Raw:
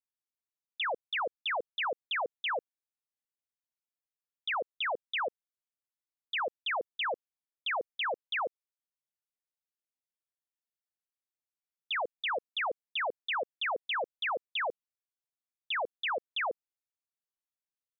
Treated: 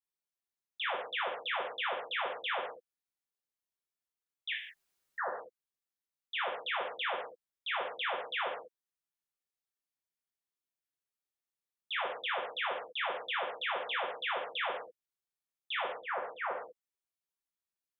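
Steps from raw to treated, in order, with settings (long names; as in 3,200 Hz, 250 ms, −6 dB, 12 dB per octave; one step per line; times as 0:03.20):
0:04.53–0:05.18: fill with room tone
0:15.76–0:16.42: low-pass filter 1,900 Hz 24 dB per octave
reverb whose tail is shaped and stops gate 220 ms falling, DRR −3.5 dB
level −6.5 dB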